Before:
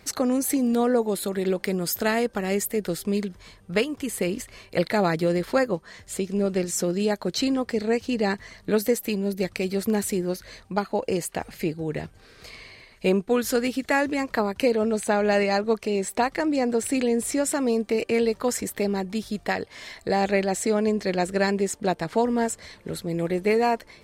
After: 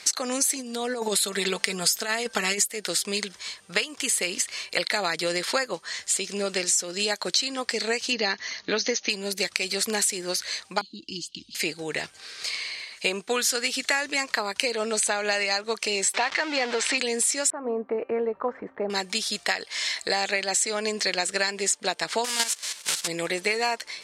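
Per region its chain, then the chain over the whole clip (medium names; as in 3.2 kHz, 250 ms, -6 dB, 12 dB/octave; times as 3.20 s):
0.55–2.64 s: bass shelf 92 Hz +6 dB + comb 4.5 ms, depth 62% + compressor with a negative ratio -21 dBFS, ratio -0.5
8.12–9.10 s: brick-wall FIR low-pass 6.8 kHz + peaking EQ 280 Hz +5.5 dB 0.68 oct
10.81–11.55 s: Chebyshev band-stop 330–3000 Hz, order 5 + distance through air 220 m
16.14–16.98 s: jump at every zero crossing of -29.5 dBFS + low-pass 4.7 kHz + overdrive pedal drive 9 dB, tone 2.8 kHz, clips at -9.5 dBFS
17.50–18.90 s: low-pass 1.2 kHz 24 dB/octave + de-hum 265.7 Hz, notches 28
22.24–23.06 s: formants flattened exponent 0.3 + level held to a coarse grid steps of 11 dB
whole clip: frequency weighting ITU-R 468; compression 6:1, threshold -26 dBFS; trim +4.5 dB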